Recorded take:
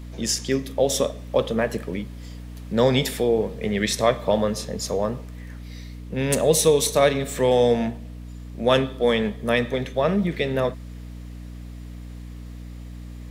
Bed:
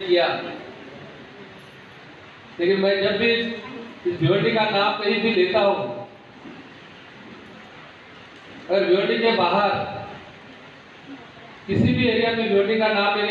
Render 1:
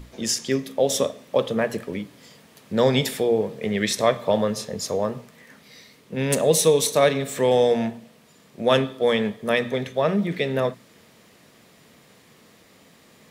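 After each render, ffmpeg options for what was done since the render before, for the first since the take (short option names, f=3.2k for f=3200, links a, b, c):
-af "bandreject=f=60:t=h:w=6,bandreject=f=120:t=h:w=6,bandreject=f=180:t=h:w=6,bandreject=f=240:t=h:w=6,bandreject=f=300:t=h:w=6"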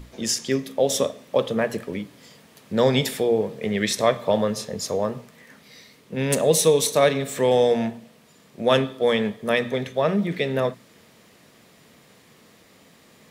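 -af anull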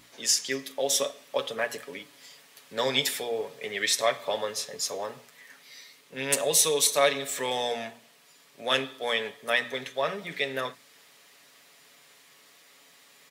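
-af "highpass=f=1.5k:p=1,aecho=1:1:7.1:0.56"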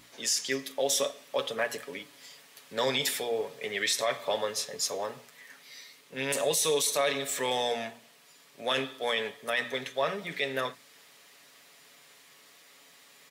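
-af "alimiter=limit=-17.5dB:level=0:latency=1:release=12"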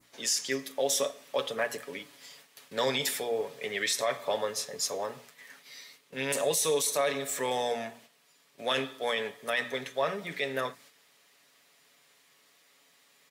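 -af "agate=range=-7dB:threshold=-54dB:ratio=16:detection=peak,adynamicequalizer=threshold=0.00562:dfrequency=3300:dqfactor=1.1:tfrequency=3300:tqfactor=1.1:attack=5:release=100:ratio=0.375:range=3:mode=cutabove:tftype=bell"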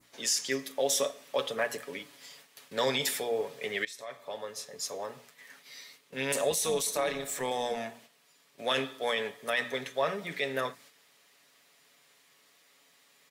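-filter_complex "[0:a]asettb=1/sr,asplit=3[a][b][c];[a]atrim=end=6.504[d];[b]atrim=start=6.5:end=7.77,asetpts=PTS-STARTPTS,afade=t=in:d=0.004:c=qsin,afade=t=out:st=1.266:d=0.004:c=qsin,tremolo=f=250:d=0.519[e];[c]atrim=start=7.766[f];[d][e]acrossfade=d=0.004:c1=hsin:c2=qsin[g];[g][f]acrossfade=d=0.004:c1=qsin:c2=hsin,asplit=2[h][i];[h]atrim=end=3.85,asetpts=PTS-STARTPTS,afade=t=out:st=3.846:d=0.004:c=hsin:silence=0.125893[j];[i]atrim=start=3.85,asetpts=PTS-STARTPTS,afade=t=in:d=1.96:silence=0.125893[k];[j][k]concat=n=2:v=0:a=1"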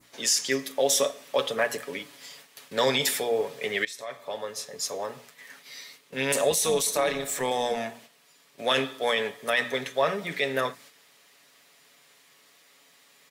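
-af "volume=5dB"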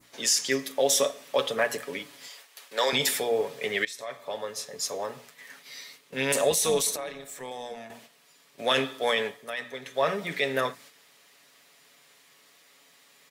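-filter_complex "[0:a]asettb=1/sr,asplit=3[a][b][c];[a]atrim=end=2.284[d];[b]atrim=start=2.28:end=2.93,asetpts=PTS-STARTPTS,afade=t=in:d=0.004:c=qsin,afade=t=out:st=0.646:d=0.004:c=qsin,highpass=510[e];[c]atrim=start=2.926[f];[d][e]acrossfade=d=0.004:c1=hsin:c2=qsin[g];[g][f]acrossfade=d=0.004:c1=qsin:c2=hsin,asplit=5[h][i][j][k][l];[h]atrim=end=6.962[m];[i]atrim=start=6.958:end=7.902,asetpts=PTS-STARTPTS,volume=-11dB[n];[j]atrim=start=7.898:end=9.47,asetpts=PTS-STARTPTS,afade=t=out:st=1.242:d=0.33:c=qsin:silence=0.334965[o];[k]atrim=start=9.47:end=9.82,asetpts=PTS-STARTPTS,volume=-9.5dB[p];[l]atrim=start=9.82,asetpts=PTS-STARTPTS,afade=t=in:d=0.33:c=qsin:silence=0.334965[q];[m][n]acrossfade=d=0.004:c1=hsin:c2=hsin[r];[o][p][q]concat=n=3:v=0:a=1[s];[r][s]acrossfade=d=0.004:c1=hsin:c2=hsin"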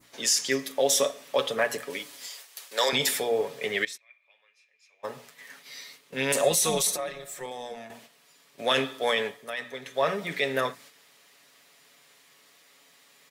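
-filter_complex "[0:a]asettb=1/sr,asplit=3[a][b][c];[a]atrim=end=1.904[d];[b]atrim=start=1.9:end=2.89,asetpts=PTS-STARTPTS,afade=t=in:d=0.004:c=qsin,afade=t=out:st=0.986:d=0.004:c=qsin,bass=f=250:g=-6,treble=f=4k:g=7[e];[c]atrim=start=2.886[f];[d][e]acrossfade=d=0.004:c1=hsin:c2=qsin[g];[g][f]acrossfade=d=0.004:c1=qsin:c2=hsin,asplit=3[h][i][j];[h]afade=t=out:st=3.96:d=0.02[k];[i]bandpass=f=2.4k:t=q:w=20,afade=t=in:st=3.96:d=0.02,afade=t=out:st=5.03:d=0.02[l];[j]afade=t=in:st=5.03:d=0.02[m];[k][l][m]amix=inputs=3:normalize=0,asettb=1/sr,asplit=3[n][o][p];[n]atrim=end=6.434[q];[o]atrim=start=6.43:end=7.46,asetpts=PTS-STARTPTS,afade=t=in:d=0.004:c=qsin,afade=t=out:st=1.026:d=0.004:c=qsin,aecho=1:1:5.6:0.65,atrim=end_sample=45423[r];[p]atrim=start=7.456[s];[q][r]acrossfade=d=0.004:c1=hsin:c2=qsin[t];[t][s]acrossfade=d=0.004:c1=qsin:c2=hsin"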